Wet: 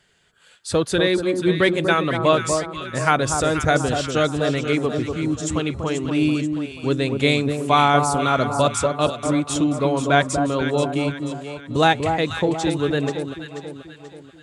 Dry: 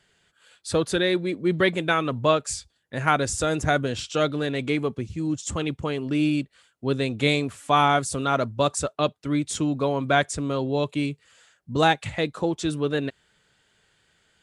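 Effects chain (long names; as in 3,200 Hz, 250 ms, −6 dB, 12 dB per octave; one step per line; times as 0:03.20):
delay that swaps between a low-pass and a high-pass 242 ms, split 1,200 Hz, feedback 66%, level −5 dB
level +3 dB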